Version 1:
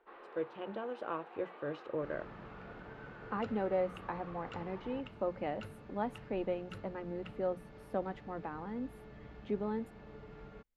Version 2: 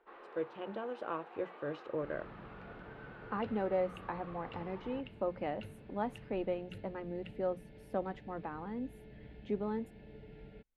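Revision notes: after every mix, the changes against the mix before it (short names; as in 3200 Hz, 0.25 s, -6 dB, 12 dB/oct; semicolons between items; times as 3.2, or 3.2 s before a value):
second sound: add fixed phaser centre 2800 Hz, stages 4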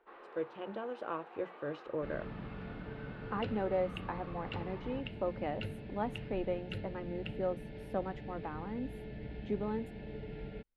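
second sound +8.5 dB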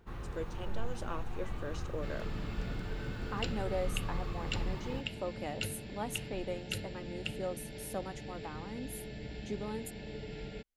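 speech -4.5 dB; first sound: remove HPF 410 Hz 24 dB/oct; master: remove air absorption 440 m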